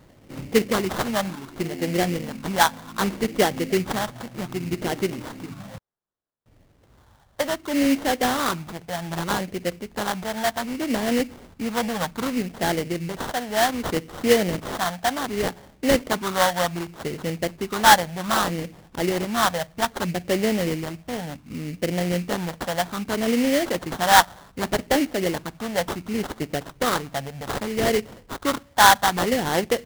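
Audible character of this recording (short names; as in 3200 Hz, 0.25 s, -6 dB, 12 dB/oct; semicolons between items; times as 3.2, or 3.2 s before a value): phasing stages 4, 0.65 Hz, lowest notch 360–1400 Hz; aliases and images of a low sample rate 2500 Hz, jitter 20%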